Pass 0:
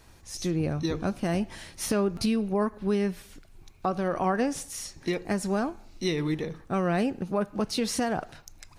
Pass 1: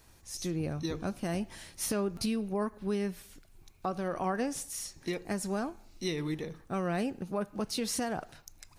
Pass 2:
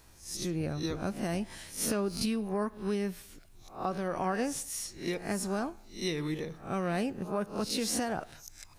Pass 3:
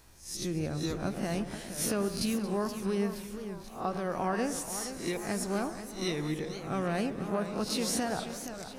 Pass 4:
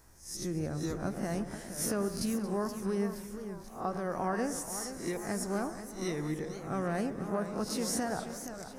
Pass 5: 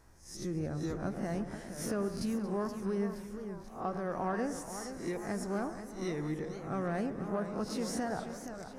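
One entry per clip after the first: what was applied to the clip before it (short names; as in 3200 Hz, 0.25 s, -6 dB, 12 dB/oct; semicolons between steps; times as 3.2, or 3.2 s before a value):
high shelf 7300 Hz +8.5 dB; gain -6 dB
spectral swells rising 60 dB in 0.36 s
on a send: echo with dull and thin repeats by turns 0.113 s, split 1700 Hz, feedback 61%, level -11.5 dB; on the sum: warbling echo 0.477 s, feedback 52%, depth 203 cents, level -10.5 dB
band shelf 3200 Hz -8.5 dB 1.1 oct; gain -1.5 dB
LPF 3500 Hz 6 dB/oct; in parallel at -10 dB: soft clip -35 dBFS, distortion -9 dB; on the sum: gain -2.5 dB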